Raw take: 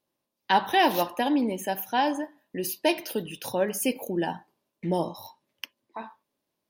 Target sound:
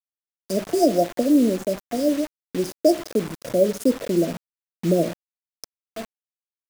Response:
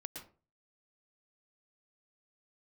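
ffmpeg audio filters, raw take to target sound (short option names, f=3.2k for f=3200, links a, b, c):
-filter_complex "[0:a]acrossover=split=950[a][b];[a]equalizer=f=63:w=0.92:g=-3[c];[b]adynamicsmooth=sensitivity=4.5:basefreq=2.3k[d];[c][d]amix=inputs=2:normalize=0,afftfilt=real='re*(1-between(b*sr/4096,720,4600))':imag='im*(1-between(b*sr/4096,720,4600))':win_size=4096:overlap=0.75,asplit=2[e][f];[f]adelay=641.4,volume=-28dB,highshelf=f=4k:g=-14.4[g];[e][g]amix=inputs=2:normalize=0,acrusher=bits=6:mix=0:aa=0.000001,volume=8dB"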